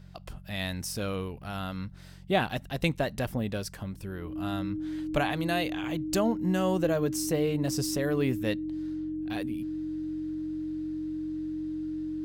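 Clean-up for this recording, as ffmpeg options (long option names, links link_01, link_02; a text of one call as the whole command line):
ffmpeg -i in.wav -af "bandreject=frequency=45.4:width_type=h:width=4,bandreject=frequency=90.8:width_type=h:width=4,bandreject=frequency=136.2:width_type=h:width=4,bandreject=frequency=181.6:width_type=h:width=4,bandreject=frequency=310:width=30" out.wav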